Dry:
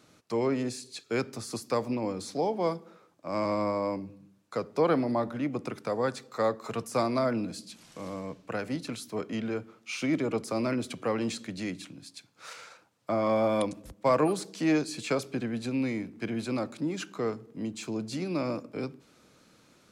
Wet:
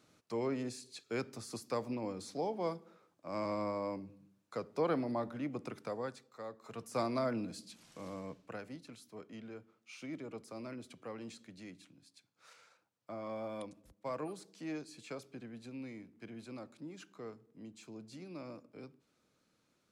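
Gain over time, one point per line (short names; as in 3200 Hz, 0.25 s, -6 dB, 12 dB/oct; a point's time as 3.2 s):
5.84 s -8 dB
6.45 s -19 dB
7.01 s -7 dB
8.31 s -7 dB
8.8 s -16 dB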